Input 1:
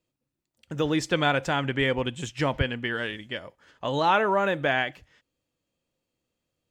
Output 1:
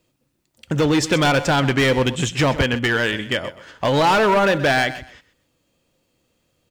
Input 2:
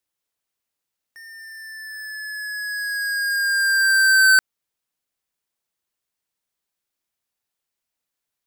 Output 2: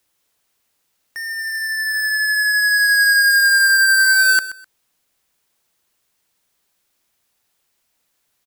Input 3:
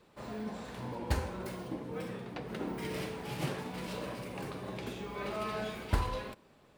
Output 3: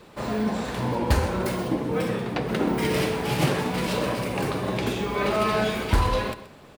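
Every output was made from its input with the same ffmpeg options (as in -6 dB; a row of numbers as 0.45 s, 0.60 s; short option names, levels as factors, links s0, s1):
-filter_complex "[0:a]asplit=2[s0][s1];[s1]acompressor=threshold=0.0251:ratio=16,volume=1[s2];[s0][s2]amix=inputs=2:normalize=0,asoftclip=type=hard:threshold=0.0891,aecho=1:1:127|254:0.178|0.0409,volume=2.51"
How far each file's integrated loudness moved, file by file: +7.5 LU, +3.5 LU, +13.0 LU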